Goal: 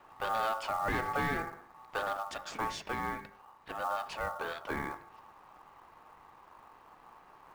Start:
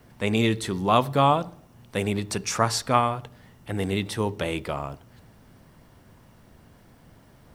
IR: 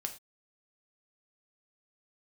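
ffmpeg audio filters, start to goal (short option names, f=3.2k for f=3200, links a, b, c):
-filter_complex "[0:a]asoftclip=type=tanh:threshold=-20.5dB,bandreject=f=50.27:t=h:w=4,bandreject=f=100.54:t=h:w=4,bandreject=f=150.81:t=h:w=4,bandreject=f=201.08:t=h:w=4,bandreject=f=251.35:t=h:w=4,bandreject=f=301.62:t=h:w=4,bandreject=f=351.89:t=h:w=4,bandreject=f=402.16:t=h:w=4,bandreject=f=452.43:t=h:w=4,bandreject=f=502.7:t=h:w=4,bandreject=f=552.97:t=h:w=4,bandreject=f=603.24:t=h:w=4,bandreject=f=653.51:t=h:w=4,bandreject=f=703.78:t=h:w=4,bandreject=f=754.05:t=h:w=4,bandreject=f=804.32:t=h:w=4,bandreject=f=854.59:t=h:w=4,bandreject=f=904.86:t=h:w=4,bandreject=f=955.13:t=h:w=4,bandreject=f=1.0054k:t=h:w=4,bandreject=f=1.05567k:t=h:w=4,bandreject=f=1.10594k:t=h:w=4,bandreject=f=1.15621k:t=h:w=4,bandreject=f=1.20648k:t=h:w=4,bandreject=f=1.25675k:t=h:w=4,asettb=1/sr,asplit=3[a][b][c];[a]atrim=end=2.174[d];[b]atrim=start=2.17:end=4.7,asetpts=PTS-STARTPTS,afade=t=in:d=0.004:c=qsin,afade=t=out:st=2.526:d=0.004:c=qsin,acrossover=split=520[e][f];[e]aeval=exprs='val(0)*(1-0.7/2+0.7/2*cos(2*PI*2.3*n/s))':c=same[g];[f]aeval=exprs='val(0)*(1-0.7/2-0.7/2*cos(2*PI*2.3*n/s))':c=same[h];[g][h]amix=inputs=2:normalize=0[i];[c]atrim=start=4.696[j];[d][i]acrossfade=d=0.004:c1=hsin:c2=qsin[k];[k][j]acrossfade=d=0.004:c1=qsin:c2=hsin,lowpass=7.7k,aeval=exprs='val(0)*sin(2*PI*1000*n/s)':c=same,alimiter=limit=-23dB:level=0:latency=1:release=132,aemphasis=mode=reproduction:type=75fm,acrusher=bits=5:mode=log:mix=0:aa=0.000001"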